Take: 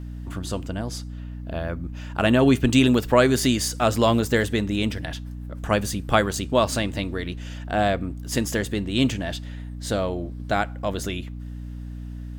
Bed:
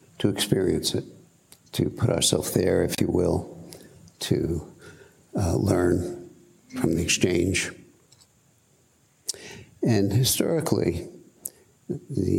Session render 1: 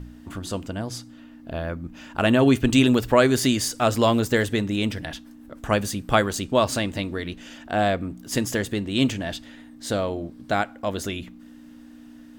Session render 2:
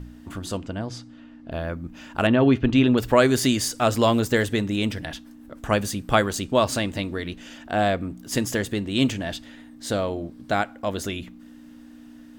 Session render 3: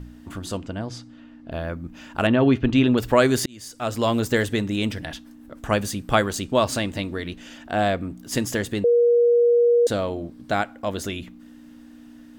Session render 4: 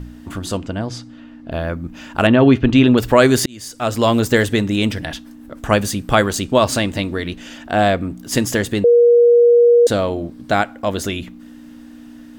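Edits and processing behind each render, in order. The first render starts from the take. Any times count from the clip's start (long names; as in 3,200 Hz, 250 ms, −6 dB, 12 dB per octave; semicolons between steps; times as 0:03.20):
hum removal 60 Hz, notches 3
0:00.57–0:01.52: high-frequency loss of the air 80 metres; 0:02.27–0:02.98: high-frequency loss of the air 230 metres
0:03.46–0:04.27: fade in; 0:08.84–0:09.87: beep over 476 Hz −13.5 dBFS
level +6.5 dB; brickwall limiter −1 dBFS, peak gain reduction 3 dB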